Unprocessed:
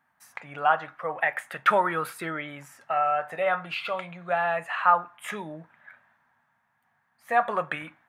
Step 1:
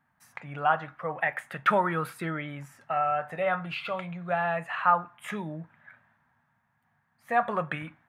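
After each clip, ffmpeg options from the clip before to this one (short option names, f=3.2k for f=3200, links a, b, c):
-af "bass=f=250:g=11,treble=f=4k:g=-3,volume=-2.5dB"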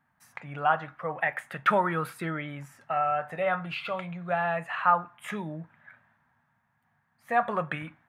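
-af anull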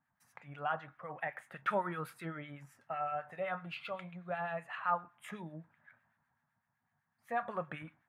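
-filter_complex "[0:a]acrossover=split=1300[a][b];[a]aeval=exprs='val(0)*(1-0.7/2+0.7/2*cos(2*PI*7.9*n/s))':c=same[c];[b]aeval=exprs='val(0)*(1-0.7/2-0.7/2*cos(2*PI*7.9*n/s))':c=same[d];[c][d]amix=inputs=2:normalize=0,volume=-7dB"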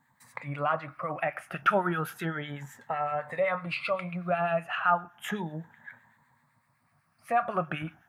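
-filter_complex "[0:a]afftfilt=real='re*pow(10,9/40*sin(2*PI*(1*log(max(b,1)*sr/1024/100)/log(2)-(0.33)*(pts-256)/sr)))':imag='im*pow(10,9/40*sin(2*PI*(1*log(max(b,1)*sr/1024/100)/log(2)-(0.33)*(pts-256)/sr)))':win_size=1024:overlap=0.75,asplit=2[a][b];[b]acompressor=threshold=-44dB:ratio=6,volume=2dB[c];[a][c]amix=inputs=2:normalize=0,volume=5.5dB"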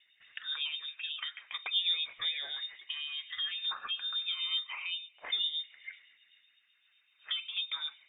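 -filter_complex "[0:a]acrossover=split=380[a][b];[b]acompressor=threshold=-39dB:ratio=8[c];[a][c]amix=inputs=2:normalize=0,aphaser=in_gain=1:out_gain=1:delay=4.8:decay=0.3:speed=1.1:type=sinusoidal,lowpass=f=3.2k:t=q:w=0.5098,lowpass=f=3.2k:t=q:w=0.6013,lowpass=f=3.2k:t=q:w=0.9,lowpass=f=3.2k:t=q:w=2.563,afreqshift=-3800"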